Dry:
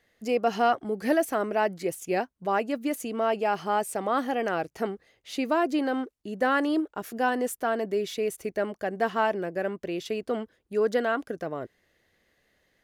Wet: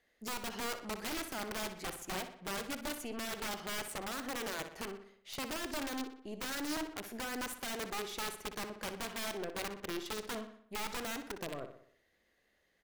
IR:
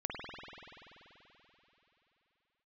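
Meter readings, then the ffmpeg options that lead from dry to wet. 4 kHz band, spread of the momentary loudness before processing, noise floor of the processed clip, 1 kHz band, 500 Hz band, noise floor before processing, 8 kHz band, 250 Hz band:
-0.5 dB, 8 LU, -75 dBFS, -14.5 dB, -16.5 dB, -71 dBFS, 0.0 dB, -13.0 dB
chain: -filter_complex "[0:a]equalizer=f=120:t=o:w=1:g=-7.5,acompressor=threshold=0.0316:ratio=2,aeval=exprs='(tanh(22.4*val(0)+0.7)-tanh(0.7))/22.4':c=same,aeval=exprs='(mod(29.9*val(0)+1,2)-1)/29.9':c=same,asplit=2[s0][s1];[s1]adelay=61,lowpass=f=4600:p=1,volume=0.355,asplit=2[s2][s3];[s3]adelay=61,lowpass=f=4600:p=1,volume=0.53,asplit=2[s4][s5];[s5]adelay=61,lowpass=f=4600:p=1,volume=0.53,asplit=2[s6][s7];[s7]adelay=61,lowpass=f=4600:p=1,volume=0.53,asplit=2[s8][s9];[s9]adelay=61,lowpass=f=4600:p=1,volume=0.53,asplit=2[s10][s11];[s11]adelay=61,lowpass=f=4600:p=1,volume=0.53[s12];[s0][s2][s4][s6][s8][s10][s12]amix=inputs=7:normalize=0,volume=0.75"

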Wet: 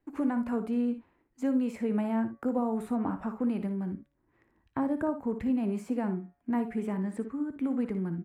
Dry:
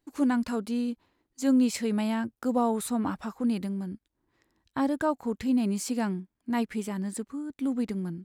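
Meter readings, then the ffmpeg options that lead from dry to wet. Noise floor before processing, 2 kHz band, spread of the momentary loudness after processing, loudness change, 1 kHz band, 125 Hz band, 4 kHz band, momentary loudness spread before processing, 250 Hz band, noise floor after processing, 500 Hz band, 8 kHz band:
-81 dBFS, -6.0 dB, 5 LU, -2.5 dB, -4.0 dB, -0.5 dB, under -15 dB, 9 LU, -2.0 dB, -74 dBFS, -1.5 dB, under -15 dB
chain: -filter_complex "[0:a]tiltshelf=f=1300:g=3,acrossover=split=320|1100|6800[s0][s1][s2][s3];[s0]acompressor=threshold=0.0251:ratio=4[s4];[s1]acompressor=threshold=0.0251:ratio=4[s5];[s2]acompressor=threshold=0.00316:ratio=4[s6];[s3]acompressor=threshold=0.00447:ratio=4[s7];[s4][s5][s6][s7]amix=inputs=4:normalize=0,highshelf=f=3100:t=q:w=1.5:g=-10.5,bandreject=f=141.7:t=h:w=4,bandreject=f=283.4:t=h:w=4,bandreject=f=425.1:t=h:w=4,bandreject=f=566.8:t=h:w=4,bandreject=f=708.5:t=h:w=4,bandreject=f=850.2:t=h:w=4,bandreject=f=991.9:t=h:w=4,bandreject=f=1133.6:t=h:w=4,bandreject=f=1275.3:t=h:w=4,bandreject=f=1417:t=h:w=4,bandreject=f=1558.7:t=h:w=4,bandreject=f=1700.4:t=h:w=4,bandreject=f=1842.1:t=h:w=4,bandreject=f=1983.8:t=h:w=4,bandreject=f=2125.5:t=h:w=4,bandreject=f=2267.2:t=h:w=4,bandreject=f=2408.9:t=h:w=4,asplit=2[s8][s9];[s9]aecho=0:1:58|76:0.282|0.141[s10];[s8][s10]amix=inputs=2:normalize=0"

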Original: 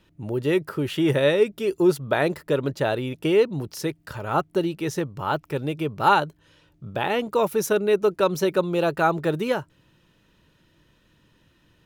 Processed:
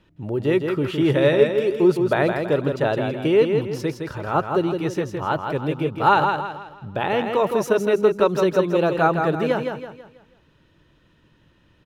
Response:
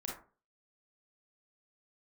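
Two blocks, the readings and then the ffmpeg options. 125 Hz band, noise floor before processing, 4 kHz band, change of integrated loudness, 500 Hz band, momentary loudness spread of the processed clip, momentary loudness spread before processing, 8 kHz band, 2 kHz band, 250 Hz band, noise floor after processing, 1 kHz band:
+3.0 dB, -62 dBFS, -0.5 dB, +2.5 dB, +3.0 dB, 10 LU, 9 LU, -5.0 dB, +2.0 dB, +3.0 dB, -59 dBFS, +3.0 dB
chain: -filter_complex "[0:a]lowpass=f=2900:p=1,asplit=2[s0][s1];[s1]aecho=0:1:163|326|489|652|815:0.531|0.207|0.0807|0.0315|0.0123[s2];[s0][s2]amix=inputs=2:normalize=0,volume=1.26"

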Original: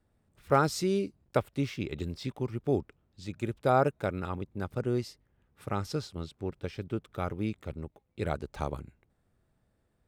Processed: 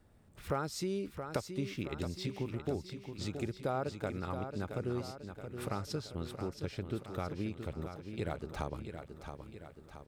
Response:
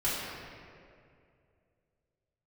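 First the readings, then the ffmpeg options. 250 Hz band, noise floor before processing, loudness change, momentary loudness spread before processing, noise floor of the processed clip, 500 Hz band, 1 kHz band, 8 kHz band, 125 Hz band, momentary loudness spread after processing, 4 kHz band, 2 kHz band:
-5.0 dB, -74 dBFS, -7.0 dB, 15 LU, -58 dBFS, -7.0 dB, -9.0 dB, -4.0 dB, -5.0 dB, 10 LU, -2.5 dB, -6.0 dB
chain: -filter_complex "[0:a]acompressor=threshold=0.00501:ratio=3,asplit=2[s0][s1];[s1]aecho=0:1:673|1346|2019|2692|3365|4038:0.398|0.215|0.116|0.0627|0.0339|0.0183[s2];[s0][s2]amix=inputs=2:normalize=0,volume=2.37"

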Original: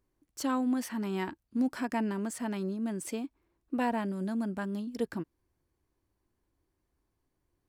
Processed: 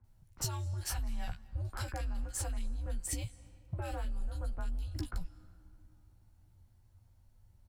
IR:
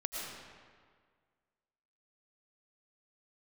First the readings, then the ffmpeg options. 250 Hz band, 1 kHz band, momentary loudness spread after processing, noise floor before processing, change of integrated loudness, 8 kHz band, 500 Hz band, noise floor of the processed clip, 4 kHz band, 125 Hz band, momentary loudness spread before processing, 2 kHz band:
-19.0 dB, -10.5 dB, 6 LU, -81 dBFS, -6.0 dB, +4.0 dB, -12.5 dB, -65 dBFS, +0.5 dB, +4.5 dB, 7 LU, -8.0 dB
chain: -filter_complex "[0:a]equalizer=f=140:t=o:w=0.77:g=7.5,asoftclip=type=tanh:threshold=0.0708,lowshelf=f=190:t=q:w=1.5:g=10,bandreject=f=600:w=12,asplit=2[s0][s1];[s1]adelay=15,volume=0.501[s2];[s0][s2]amix=inputs=2:normalize=0,acrossover=split=2000[s3][s4];[s4]adelay=40[s5];[s3][s5]amix=inputs=2:normalize=0,acompressor=threshold=0.0224:ratio=6,highpass=45,acrossover=split=150|3000[s6][s7][s8];[s7]acompressor=threshold=0.00708:ratio=6[s9];[s6][s9][s8]amix=inputs=3:normalize=0,asplit=2[s10][s11];[1:a]atrim=start_sample=2205,asetrate=23814,aresample=44100[s12];[s11][s12]afir=irnorm=-1:irlink=0,volume=0.0631[s13];[s10][s13]amix=inputs=2:normalize=0,afreqshift=-160,volume=1.78"

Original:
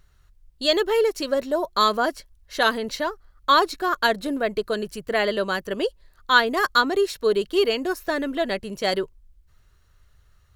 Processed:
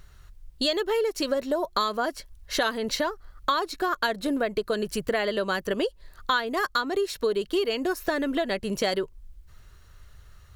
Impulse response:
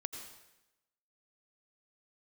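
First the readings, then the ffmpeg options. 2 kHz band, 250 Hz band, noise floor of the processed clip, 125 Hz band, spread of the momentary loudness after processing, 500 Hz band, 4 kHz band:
-6.0 dB, -1.5 dB, -52 dBFS, no reading, 5 LU, -4.0 dB, -4.5 dB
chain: -af "acompressor=threshold=0.0282:ratio=6,volume=2.37"

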